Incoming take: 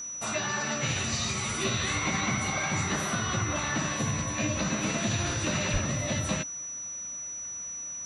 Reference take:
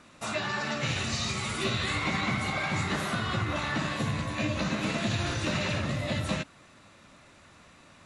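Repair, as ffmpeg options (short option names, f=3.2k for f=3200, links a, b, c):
-filter_complex "[0:a]bandreject=f=5.9k:w=30,asplit=3[a][b][c];[a]afade=t=out:st=5.72:d=0.02[d];[b]highpass=f=140:w=0.5412,highpass=f=140:w=1.3066,afade=t=in:st=5.72:d=0.02,afade=t=out:st=5.84:d=0.02[e];[c]afade=t=in:st=5.84:d=0.02[f];[d][e][f]amix=inputs=3:normalize=0"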